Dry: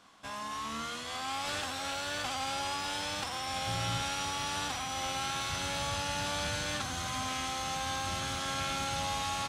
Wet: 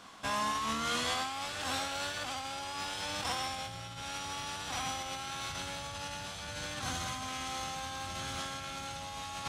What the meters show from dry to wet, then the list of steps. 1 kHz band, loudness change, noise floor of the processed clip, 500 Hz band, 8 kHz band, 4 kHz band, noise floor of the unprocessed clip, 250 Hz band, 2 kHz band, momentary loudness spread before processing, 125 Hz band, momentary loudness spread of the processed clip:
-2.0 dB, -2.5 dB, -44 dBFS, -2.5 dB, -3.0 dB, -2.5 dB, -40 dBFS, -2.0 dB, -2.5 dB, 4 LU, -5.0 dB, 8 LU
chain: negative-ratio compressor -39 dBFS, ratio -0.5; de-hum 290.7 Hz, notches 31; gain +2.5 dB

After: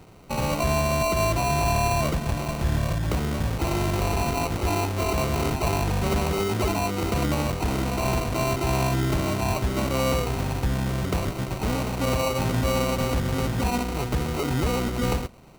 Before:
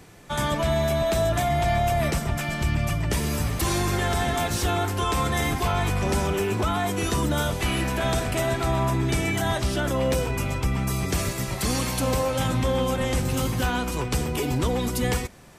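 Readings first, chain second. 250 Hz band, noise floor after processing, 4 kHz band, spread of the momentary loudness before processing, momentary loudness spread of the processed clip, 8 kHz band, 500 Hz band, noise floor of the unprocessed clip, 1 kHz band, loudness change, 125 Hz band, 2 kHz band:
0.0 dB, -31 dBFS, -2.0 dB, 3 LU, 4 LU, -2.5 dB, -0.5 dB, -31 dBFS, 0.0 dB, -0.5 dB, 0.0 dB, -2.5 dB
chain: median filter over 5 samples; sample-rate reducer 1700 Hz, jitter 0%

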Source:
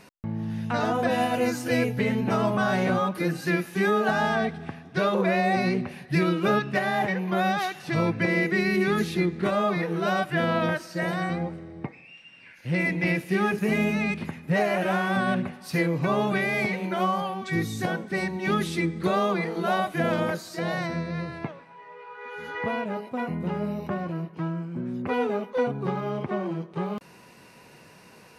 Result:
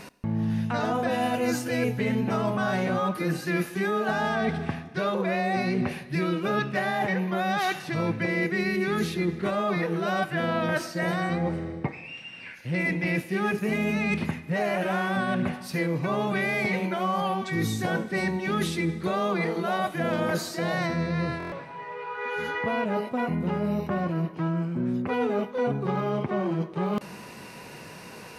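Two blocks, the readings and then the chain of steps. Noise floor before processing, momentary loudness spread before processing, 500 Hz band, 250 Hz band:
-51 dBFS, 9 LU, -1.5 dB, -0.5 dB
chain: reverse; compressor 6:1, threshold -32 dBFS, peak gain reduction 13 dB; reverse; Schroeder reverb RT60 1.7 s, combs from 25 ms, DRR 16.5 dB; stuck buffer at 21.38, samples 1024, times 5; gain +8 dB

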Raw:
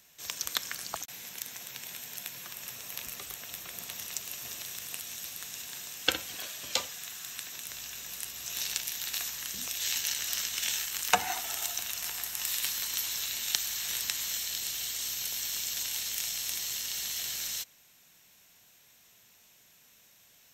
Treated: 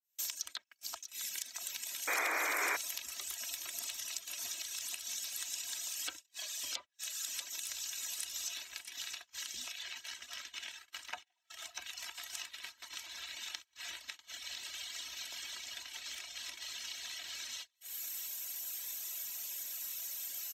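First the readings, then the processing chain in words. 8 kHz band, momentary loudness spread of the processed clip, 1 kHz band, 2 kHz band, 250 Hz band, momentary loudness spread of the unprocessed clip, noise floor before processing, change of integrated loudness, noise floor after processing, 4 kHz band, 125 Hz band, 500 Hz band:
-6.5 dB, 7 LU, -6.0 dB, -2.0 dB, -8.5 dB, 10 LU, -61 dBFS, -7.0 dB, -74 dBFS, -7.0 dB, under -15 dB, -5.5 dB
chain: opening faded in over 0.57 s; treble ducked by the level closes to 2100 Hz, closed at -30.5 dBFS; reverb removal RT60 1.3 s; bell 62 Hz +9.5 dB 1.3 oct; notch 420 Hz, Q 12; comb 3.1 ms, depth 66%; compressor 5:1, threshold -57 dBFS, peak gain reduction 33 dB; echo 0.643 s -9 dB; painted sound noise, 2.07–2.77, 270–2500 Hz -44 dBFS; RIAA curve recording; gate -54 dBFS, range -30 dB; gain +8.5 dB

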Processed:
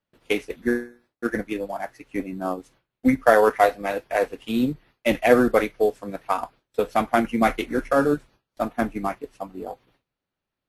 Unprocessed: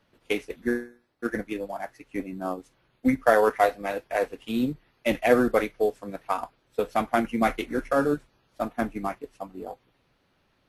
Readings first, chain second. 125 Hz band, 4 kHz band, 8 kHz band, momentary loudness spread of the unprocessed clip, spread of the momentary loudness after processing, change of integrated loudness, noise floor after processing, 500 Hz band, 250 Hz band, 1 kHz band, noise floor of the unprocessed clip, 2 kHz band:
+3.5 dB, +3.5 dB, +3.5 dB, 15 LU, 15 LU, +3.5 dB, under -85 dBFS, +3.5 dB, +3.5 dB, +3.5 dB, -69 dBFS, +3.5 dB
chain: gate with hold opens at -54 dBFS; gain +3.5 dB

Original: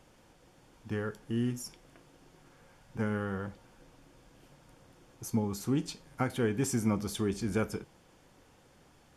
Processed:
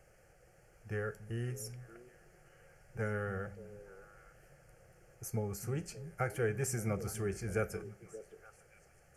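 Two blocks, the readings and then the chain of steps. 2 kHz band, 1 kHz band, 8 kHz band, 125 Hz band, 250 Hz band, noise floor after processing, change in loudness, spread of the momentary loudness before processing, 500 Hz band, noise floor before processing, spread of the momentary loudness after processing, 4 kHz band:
-0.5 dB, -4.0 dB, -2.5 dB, -2.5 dB, -11.0 dB, -64 dBFS, -5.0 dB, 12 LU, -2.0 dB, -62 dBFS, 19 LU, -10.0 dB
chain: fixed phaser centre 990 Hz, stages 6; on a send: delay with a stepping band-pass 0.289 s, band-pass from 150 Hz, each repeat 1.4 oct, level -9 dB

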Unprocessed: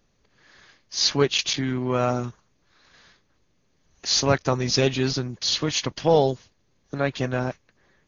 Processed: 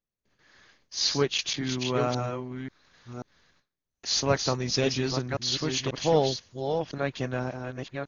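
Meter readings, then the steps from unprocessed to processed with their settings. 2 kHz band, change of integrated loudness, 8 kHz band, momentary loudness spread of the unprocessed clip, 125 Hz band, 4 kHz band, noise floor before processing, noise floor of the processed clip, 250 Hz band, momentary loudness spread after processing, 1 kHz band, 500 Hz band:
-4.0 dB, -4.5 dB, n/a, 12 LU, -4.0 dB, -4.0 dB, -67 dBFS, under -85 dBFS, -4.0 dB, 14 LU, -4.0 dB, -4.0 dB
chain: reverse delay 0.537 s, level -5.5 dB; gate with hold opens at -49 dBFS; gain -5 dB

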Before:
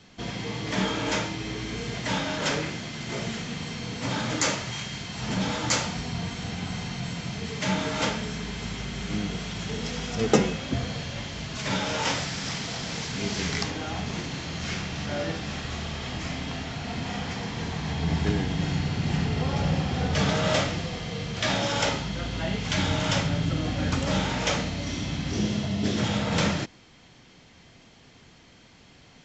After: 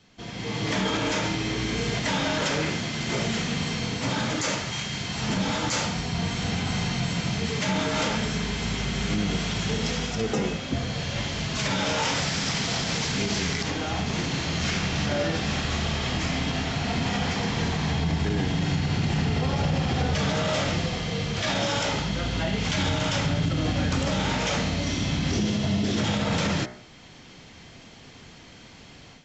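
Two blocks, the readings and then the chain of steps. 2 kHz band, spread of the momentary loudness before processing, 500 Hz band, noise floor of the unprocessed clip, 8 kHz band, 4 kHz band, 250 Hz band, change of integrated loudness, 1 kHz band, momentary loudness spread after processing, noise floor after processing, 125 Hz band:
+2.5 dB, 8 LU, +1.0 dB, -54 dBFS, +1.5 dB, +3.0 dB, +2.0 dB, +2.0 dB, +2.0 dB, 3 LU, -48 dBFS, +2.5 dB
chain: de-hum 60.47 Hz, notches 36; AGC gain up to 11.5 dB; limiter -11.5 dBFS, peak gain reduction 10 dB; gain -5 dB

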